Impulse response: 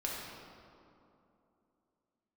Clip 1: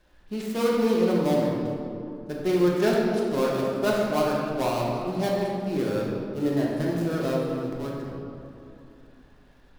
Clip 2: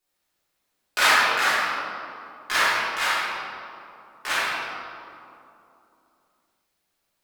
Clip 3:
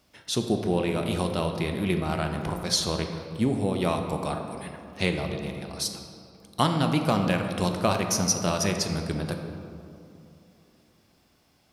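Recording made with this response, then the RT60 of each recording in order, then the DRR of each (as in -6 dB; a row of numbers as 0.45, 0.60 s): 1; 2.8, 2.8, 2.8 s; -4.0, -13.0, 4.5 dB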